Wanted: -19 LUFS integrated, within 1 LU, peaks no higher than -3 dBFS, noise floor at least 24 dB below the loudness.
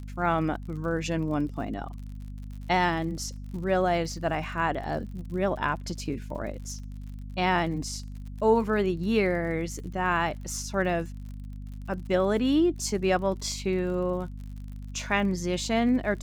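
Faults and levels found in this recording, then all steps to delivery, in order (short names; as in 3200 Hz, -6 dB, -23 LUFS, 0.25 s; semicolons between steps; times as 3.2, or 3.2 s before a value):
ticks 51/s; hum 50 Hz; harmonics up to 250 Hz; hum level -36 dBFS; loudness -28.0 LUFS; peak -10.0 dBFS; loudness target -19.0 LUFS
-> de-click; notches 50/100/150/200/250 Hz; gain +9 dB; limiter -3 dBFS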